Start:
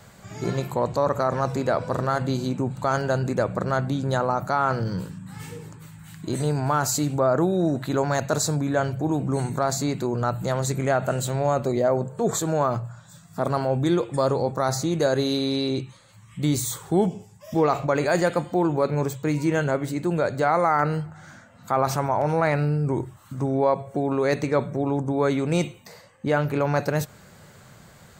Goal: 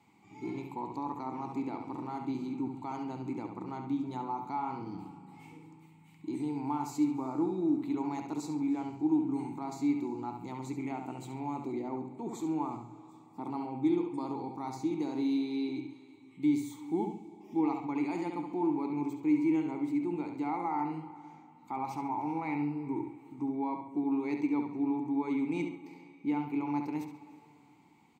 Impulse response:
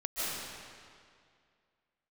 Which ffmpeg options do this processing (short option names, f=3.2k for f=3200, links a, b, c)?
-filter_complex "[0:a]asplit=3[a][b][c];[a]bandpass=f=300:t=q:w=8,volume=0dB[d];[b]bandpass=f=870:t=q:w=8,volume=-6dB[e];[c]bandpass=f=2.24k:t=q:w=8,volume=-9dB[f];[d][e][f]amix=inputs=3:normalize=0,aemphasis=mode=production:type=50fm,asplit=2[g][h];[h]adelay=69,lowpass=f=4.8k:p=1,volume=-6dB,asplit=2[i][j];[j]adelay=69,lowpass=f=4.8k:p=1,volume=0.41,asplit=2[k][l];[l]adelay=69,lowpass=f=4.8k:p=1,volume=0.41,asplit=2[m][n];[n]adelay=69,lowpass=f=4.8k:p=1,volume=0.41,asplit=2[o][p];[p]adelay=69,lowpass=f=4.8k:p=1,volume=0.41[q];[g][i][k][m][o][q]amix=inputs=6:normalize=0,asplit=2[r][s];[1:a]atrim=start_sample=2205,asetrate=41895,aresample=44100,adelay=134[t];[s][t]afir=irnorm=-1:irlink=0,volume=-24dB[u];[r][u]amix=inputs=2:normalize=0"